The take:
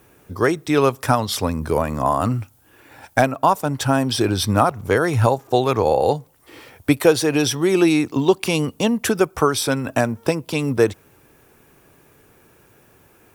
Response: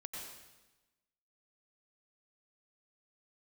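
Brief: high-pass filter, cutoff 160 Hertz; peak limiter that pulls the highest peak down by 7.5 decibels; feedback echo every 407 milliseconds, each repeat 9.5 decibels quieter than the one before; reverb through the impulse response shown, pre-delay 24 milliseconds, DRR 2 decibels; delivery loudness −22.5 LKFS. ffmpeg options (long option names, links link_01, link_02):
-filter_complex "[0:a]highpass=160,alimiter=limit=-9.5dB:level=0:latency=1,aecho=1:1:407|814|1221|1628:0.335|0.111|0.0365|0.012,asplit=2[link_01][link_02];[1:a]atrim=start_sample=2205,adelay=24[link_03];[link_02][link_03]afir=irnorm=-1:irlink=0,volume=0dB[link_04];[link_01][link_04]amix=inputs=2:normalize=0,volume=-2.5dB"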